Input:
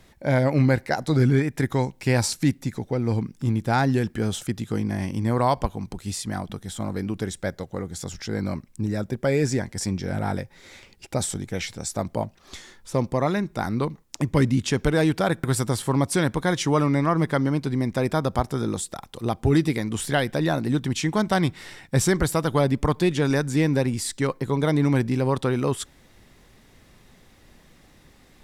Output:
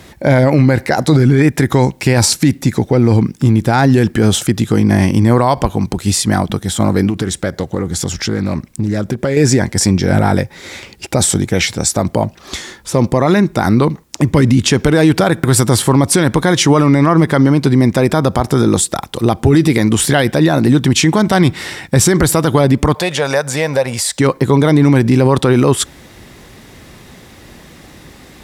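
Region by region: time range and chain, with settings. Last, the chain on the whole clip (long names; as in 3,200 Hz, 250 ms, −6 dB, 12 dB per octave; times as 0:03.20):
0:07.09–0:09.37: downward compressor 5 to 1, threshold −29 dBFS + highs frequency-modulated by the lows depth 0.17 ms
0:22.94–0:24.19: low shelf with overshoot 430 Hz −9.5 dB, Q 3 + downward compressor 2 to 1, threshold −32 dBFS
whole clip: high-pass filter 49 Hz; parametric band 340 Hz +2.5 dB 0.32 octaves; boost into a limiter +17 dB; level −1 dB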